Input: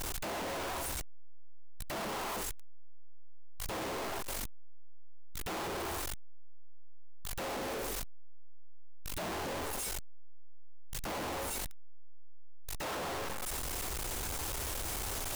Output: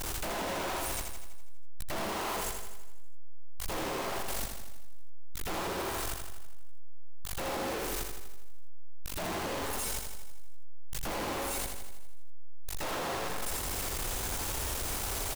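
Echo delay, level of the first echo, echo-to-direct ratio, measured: 82 ms, -5.5 dB, -3.5 dB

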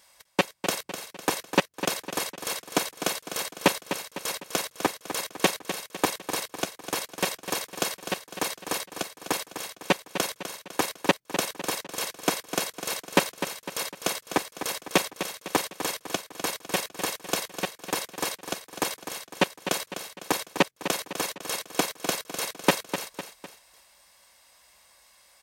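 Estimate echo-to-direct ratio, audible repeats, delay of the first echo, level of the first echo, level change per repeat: -9.0 dB, 3, 0.252 s, -10.0 dB, -6.5 dB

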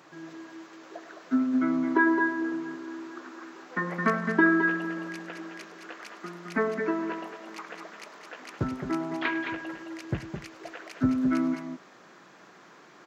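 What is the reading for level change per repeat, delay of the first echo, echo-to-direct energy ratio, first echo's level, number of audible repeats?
no steady repeat, 0.103 s, -5.5 dB, -16.5 dB, 2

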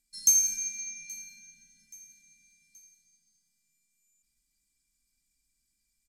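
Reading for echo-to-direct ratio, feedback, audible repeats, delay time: -20.5 dB, 46%, 3, 0.826 s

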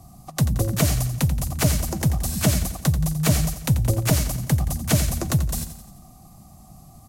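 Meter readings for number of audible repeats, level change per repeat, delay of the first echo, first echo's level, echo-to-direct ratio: 5, -5.5 dB, 87 ms, -11.0 dB, -9.5 dB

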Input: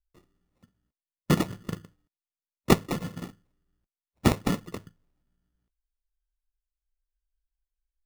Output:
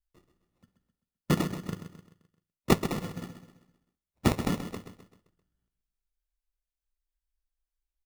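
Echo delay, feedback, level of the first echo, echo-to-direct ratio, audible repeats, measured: 0.13 s, 44%, -10.0 dB, -9.0 dB, 4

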